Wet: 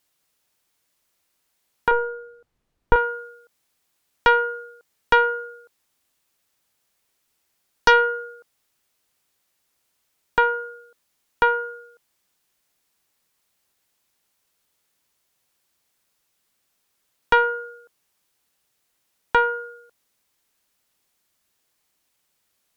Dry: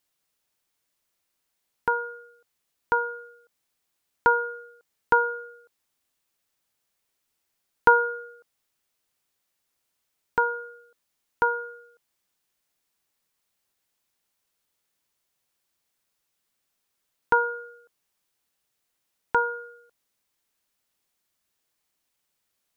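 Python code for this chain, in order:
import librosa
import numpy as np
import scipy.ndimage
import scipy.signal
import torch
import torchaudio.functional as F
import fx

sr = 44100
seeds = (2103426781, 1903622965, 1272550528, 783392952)

y = fx.cheby_harmonics(x, sr, harmonics=(4, 5), levels_db=(-13, -14), full_scale_db=-4.0)
y = fx.tilt_eq(y, sr, slope=-4.0, at=(1.91, 2.96))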